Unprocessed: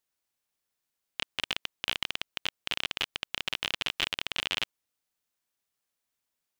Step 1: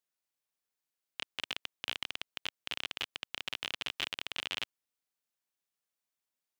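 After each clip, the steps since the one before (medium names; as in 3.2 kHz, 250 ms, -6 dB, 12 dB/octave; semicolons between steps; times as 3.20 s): bass shelf 66 Hz -11.5 dB; trim -6 dB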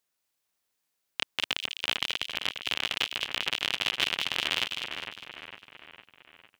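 two-band feedback delay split 2.5 kHz, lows 455 ms, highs 202 ms, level -6 dB; trim +8 dB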